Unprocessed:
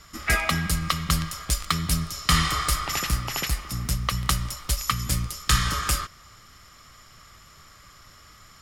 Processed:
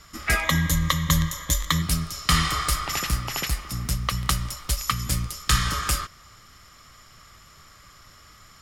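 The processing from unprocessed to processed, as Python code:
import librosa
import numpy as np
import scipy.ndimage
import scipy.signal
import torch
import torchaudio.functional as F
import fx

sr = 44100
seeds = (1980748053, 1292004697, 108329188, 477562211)

y = fx.ripple_eq(x, sr, per_octave=1.1, db=13, at=(0.43, 1.82))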